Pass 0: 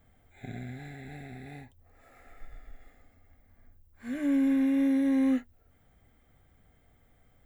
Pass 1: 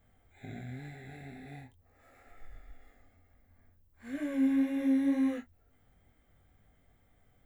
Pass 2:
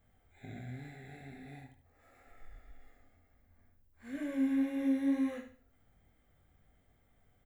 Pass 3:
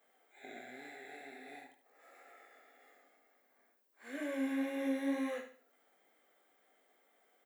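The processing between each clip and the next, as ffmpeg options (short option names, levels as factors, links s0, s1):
-af "flanger=delay=19.5:depth=3.7:speed=2.1"
-af "aecho=1:1:73|146|219|292:0.355|0.11|0.0341|0.0106,volume=0.708"
-af "highpass=f=350:w=0.5412,highpass=f=350:w=1.3066,volume=1.58"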